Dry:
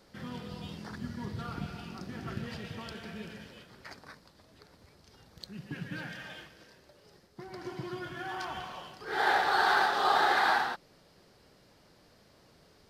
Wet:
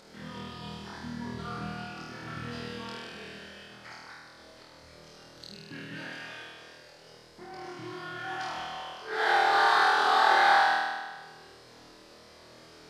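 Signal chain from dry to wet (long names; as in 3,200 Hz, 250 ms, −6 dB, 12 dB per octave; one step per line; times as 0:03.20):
low-pass filter 9,800 Hz 12 dB per octave
low-shelf EQ 200 Hz −10.5 dB
upward compression, threshold −48 dBFS
on a send: flutter between parallel walls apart 4.3 metres, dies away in 1.4 s
on the sum: level −2.5 dB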